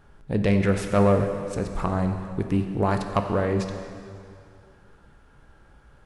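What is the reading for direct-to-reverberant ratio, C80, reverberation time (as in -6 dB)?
5.5 dB, 7.5 dB, 2.4 s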